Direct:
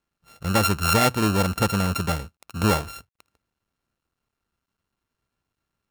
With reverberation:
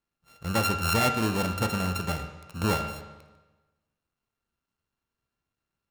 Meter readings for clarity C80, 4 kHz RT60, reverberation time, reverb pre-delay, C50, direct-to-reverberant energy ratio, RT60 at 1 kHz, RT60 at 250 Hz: 9.0 dB, 1.1 s, 1.2 s, 13 ms, 7.5 dB, 5.0 dB, 1.2 s, 1.2 s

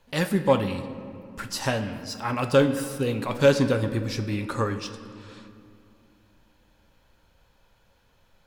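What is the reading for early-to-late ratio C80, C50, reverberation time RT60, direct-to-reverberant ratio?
11.5 dB, 10.5 dB, 2.5 s, 8.5 dB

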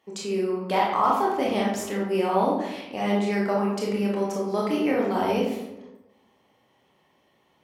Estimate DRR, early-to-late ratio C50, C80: −4.0 dB, 2.0 dB, 5.5 dB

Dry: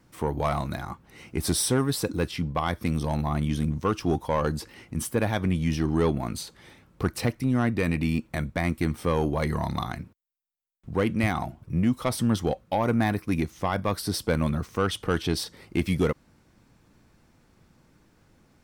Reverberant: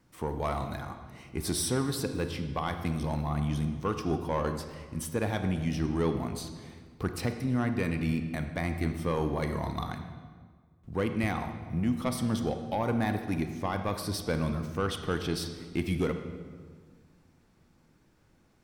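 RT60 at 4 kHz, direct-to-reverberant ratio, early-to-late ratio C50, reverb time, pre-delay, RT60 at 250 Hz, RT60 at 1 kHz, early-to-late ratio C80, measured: 1.2 s, 7.0 dB, 8.0 dB, 1.6 s, 31 ms, 2.0 s, 1.5 s, 9.0 dB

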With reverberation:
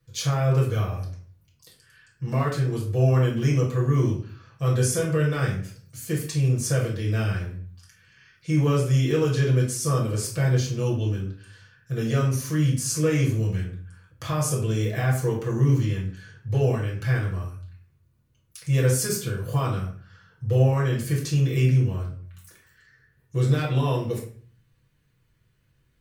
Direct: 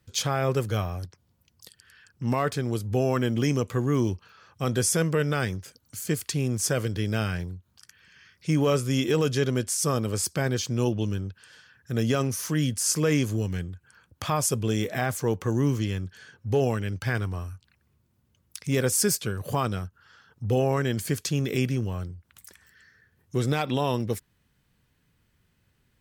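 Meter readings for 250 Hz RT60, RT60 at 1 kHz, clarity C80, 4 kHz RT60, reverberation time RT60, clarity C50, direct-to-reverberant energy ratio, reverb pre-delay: 0.65 s, 0.45 s, 10.0 dB, 0.35 s, 0.45 s, 6.0 dB, −5.0 dB, 6 ms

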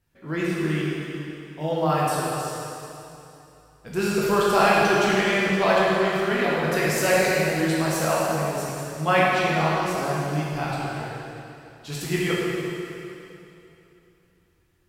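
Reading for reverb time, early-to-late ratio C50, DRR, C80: 3.0 s, −3.5 dB, −6.5 dB, −1.5 dB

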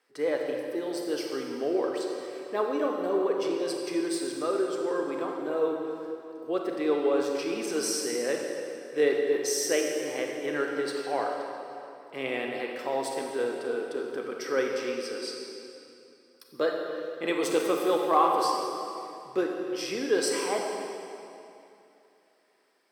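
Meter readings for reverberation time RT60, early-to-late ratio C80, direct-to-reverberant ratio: 2.8 s, 2.5 dB, 1.0 dB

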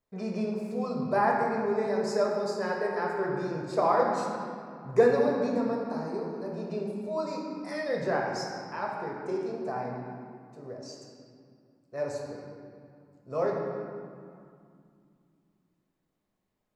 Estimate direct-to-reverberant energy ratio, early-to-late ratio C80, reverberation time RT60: −2.0 dB, 2.5 dB, 2.4 s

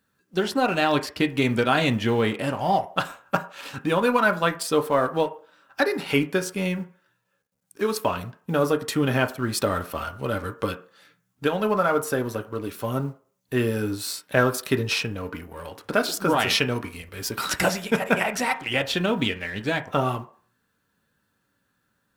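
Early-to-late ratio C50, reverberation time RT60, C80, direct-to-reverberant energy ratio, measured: 16.0 dB, 0.45 s, 19.5 dB, 4.5 dB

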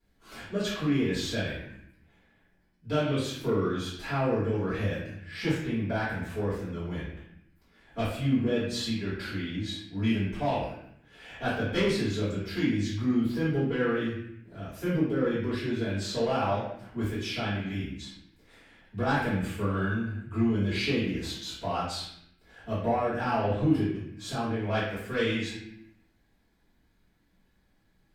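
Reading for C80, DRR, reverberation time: 4.0 dB, −13.0 dB, 0.75 s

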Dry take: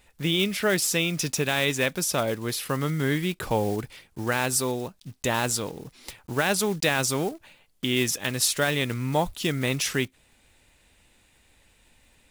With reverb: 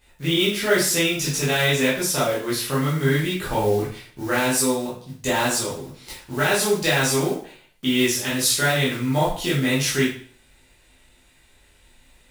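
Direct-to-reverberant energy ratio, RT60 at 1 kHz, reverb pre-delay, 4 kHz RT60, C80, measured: −8.5 dB, 0.45 s, 5 ms, 0.45 s, 9.0 dB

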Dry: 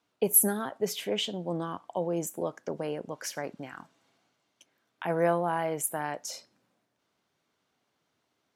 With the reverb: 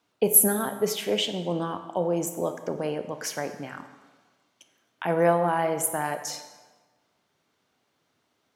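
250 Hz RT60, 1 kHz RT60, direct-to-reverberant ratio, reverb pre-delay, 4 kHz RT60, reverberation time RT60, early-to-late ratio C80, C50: 1.2 s, 1.4 s, 8.5 dB, 24 ms, 1.1 s, 1.4 s, 11.5 dB, 10.0 dB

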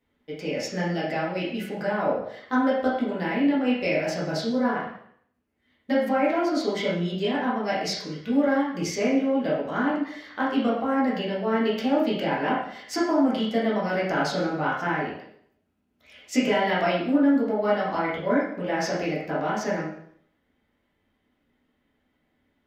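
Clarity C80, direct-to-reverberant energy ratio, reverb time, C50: 6.0 dB, −7.5 dB, 0.65 s, 2.0 dB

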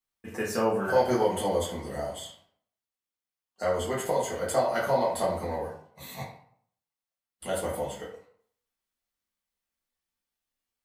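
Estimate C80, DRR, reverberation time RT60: 9.0 dB, −7.0 dB, 0.60 s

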